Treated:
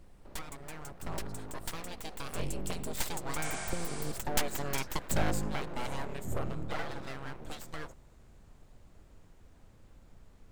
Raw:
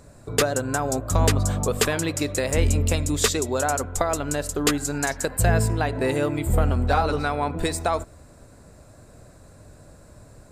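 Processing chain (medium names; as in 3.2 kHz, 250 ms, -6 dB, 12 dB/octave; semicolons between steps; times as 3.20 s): Doppler pass-by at 4.43 s, 27 m/s, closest 29 m; full-wave rectifier; spectral replace 3.47–4.09 s, 540–10000 Hz both; added noise brown -48 dBFS; trim -6 dB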